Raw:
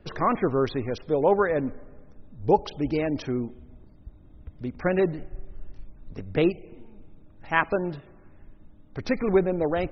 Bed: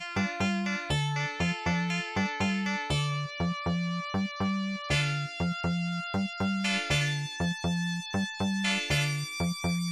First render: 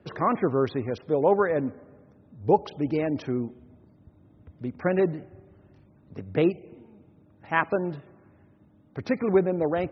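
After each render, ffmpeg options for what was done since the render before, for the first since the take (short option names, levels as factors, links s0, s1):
-af "highpass=f=88:w=0.5412,highpass=f=88:w=1.3066,highshelf=f=3600:g=-10"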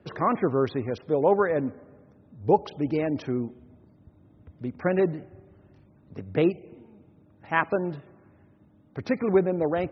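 -af anull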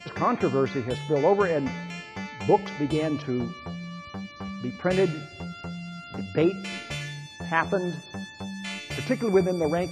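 -filter_complex "[1:a]volume=0.473[s0];[0:a][s0]amix=inputs=2:normalize=0"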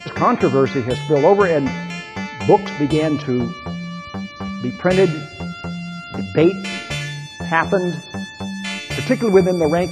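-af "volume=2.66,alimiter=limit=0.891:level=0:latency=1"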